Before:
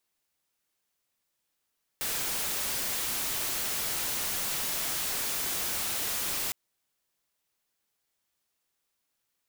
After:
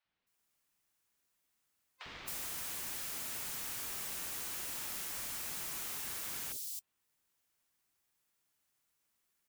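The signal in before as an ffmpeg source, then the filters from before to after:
-f lavfi -i "anoisesrc=c=white:a=0.0461:d=4.51:r=44100:seed=1"
-filter_complex "[0:a]afftfilt=real='real(if(between(b,1,1008),(2*floor((b-1)/24)+1)*24-b,b),0)':imag='imag(if(between(b,1,1008),(2*floor((b-1)/24)+1)*24-b,b),0)*if(between(b,1,1008),-1,1)':win_size=2048:overlap=0.75,acompressor=threshold=-46dB:ratio=2,acrossover=split=570|4000[a][b][c];[a]adelay=50[d];[c]adelay=270[e];[d][b][e]amix=inputs=3:normalize=0"

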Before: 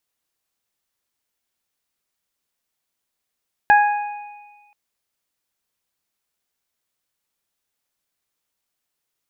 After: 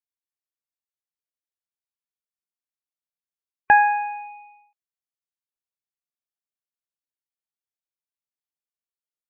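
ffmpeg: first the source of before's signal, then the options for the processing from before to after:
-f lavfi -i "aevalsrc='0.355*pow(10,-3*t/1.31)*sin(2*PI*828*t)+0.251*pow(10,-3*t/0.78)*sin(2*PI*1656*t)+0.0447*pow(10,-3*t/1.98)*sin(2*PI*2484*t)':d=1.03:s=44100"
-af "afftdn=nr=22:nf=-37"

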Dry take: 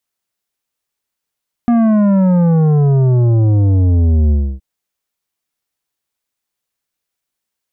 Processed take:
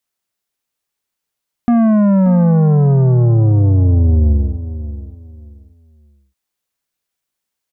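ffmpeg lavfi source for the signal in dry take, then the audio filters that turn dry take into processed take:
-f lavfi -i "aevalsrc='0.335*clip((2.92-t)/0.29,0,1)*tanh(3.16*sin(2*PI*240*2.92/log(65/240)*(exp(log(65/240)*t/2.92)-1)))/tanh(3.16)':d=2.92:s=44100"
-af "aecho=1:1:581|1162|1743:0.224|0.056|0.014"

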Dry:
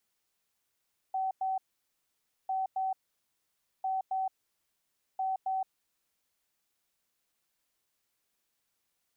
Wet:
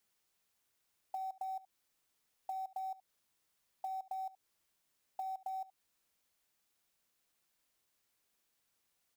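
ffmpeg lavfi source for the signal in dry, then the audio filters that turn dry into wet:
-f lavfi -i "aevalsrc='0.0376*sin(2*PI*762*t)*clip(min(mod(mod(t,1.35),0.27),0.17-mod(mod(t,1.35),0.27))/0.005,0,1)*lt(mod(t,1.35),0.54)':d=5.4:s=44100"
-af "acompressor=threshold=-40dB:ratio=6,acrusher=bits=6:mode=log:mix=0:aa=0.000001,aecho=1:1:72:0.119"

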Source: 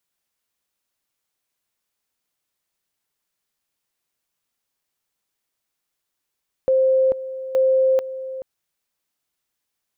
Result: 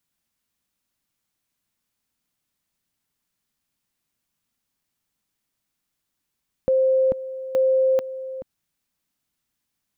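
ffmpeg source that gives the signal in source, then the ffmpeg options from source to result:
-f lavfi -i "aevalsrc='pow(10,(-13.5-14*gte(mod(t,0.87),0.44))/20)*sin(2*PI*525*t)':d=1.74:s=44100"
-af "lowshelf=f=320:t=q:w=1.5:g=6.5"

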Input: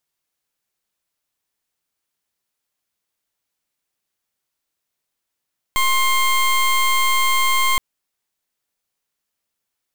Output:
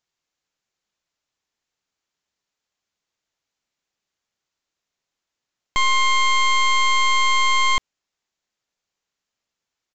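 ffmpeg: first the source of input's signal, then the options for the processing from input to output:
-f lavfi -i "aevalsrc='0.15*(2*lt(mod(1060*t,1),0.2)-1)':d=2.02:s=44100"
-af "aresample=16000,aresample=44100"

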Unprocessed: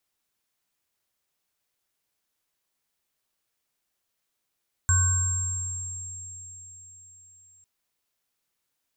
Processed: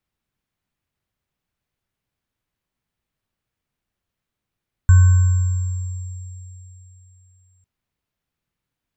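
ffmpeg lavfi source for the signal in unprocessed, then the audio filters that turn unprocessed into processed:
-f lavfi -i "aevalsrc='0.112*pow(10,-3*t/3.18)*sin(2*PI*90.7*t)+0.0211*pow(10,-3*t/1.72)*sin(2*PI*1090*t)+0.0355*pow(10,-3*t/1.29)*sin(2*PI*1520*t)+0.0891*pow(10,-3*t/4.86)*sin(2*PI*7480*t)':d=2.75:s=44100"
-af "bass=f=250:g=14,treble=f=4k:g=-10"

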